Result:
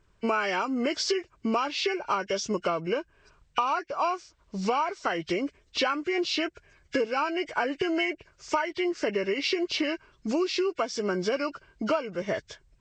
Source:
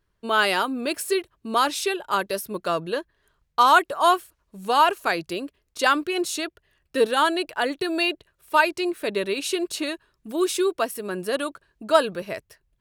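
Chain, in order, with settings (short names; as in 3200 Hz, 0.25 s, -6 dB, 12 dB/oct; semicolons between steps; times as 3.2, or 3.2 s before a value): nonlinear frequency compression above 1400 Hz 1.5:1; compressor 12:1, threshold -32 dBFS, peak gain reduction 21 dB; gain +8 dB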